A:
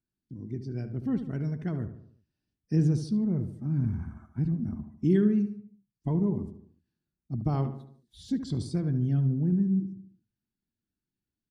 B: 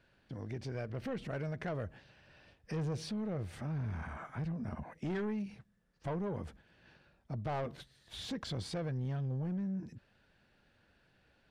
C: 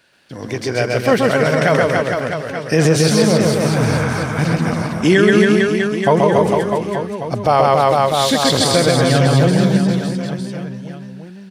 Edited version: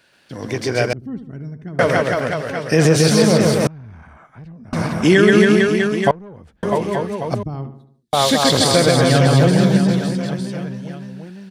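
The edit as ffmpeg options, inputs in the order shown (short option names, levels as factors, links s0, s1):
-filter_complex "[0:a]asplit=2[s0][s1];[1:a]asplit=2[s2][s3];[2:a]asplit=5[s4][s5][s6][s7][s8];[s4]atrim=end=0.932[s9];[s0]atrim=start=0.928:end=1.792[s10];[s5]atrim=start=1.788:end=3.672[s11];[s2]atrim=start=3.668:end=4.732[s12];[s6]atrim=start=4.728:end=6.112[s13];[s3]atrim=start=6.108:end=6.632[s14];[s7]atrim=start=6.628:end=7.432[s15];[s1]atrim=start=7.428:end=8.132[s16];[s8]atrim=start=8.128[s17];[s9][s10]acrossfade=d=0.004:c1=hsin:c2=hsin[s18];[s18][s11]acrossfade=d=0.004:c1=hsin:c2=hsin[s19];[s19][s12]acrossfade=d=0.004:c1=hsin:c2=hsin[s20];[s20][s13]acrossfade=d=0.004:c1=hsin:c2=hsin[s21];[s21][s14]acrossfade=d=0.004:c1=hsin:c2=hsin[s22];[s22][s15]acrossfade=d=0.004:c1=hsin:c2=hsin[s23];[s23][s16]acrossfade=d=0.004:c1=hsin:c2=hsin[s24];[s24][s17]acrossfade=d=0.004:c1=hsin:c2=hsin"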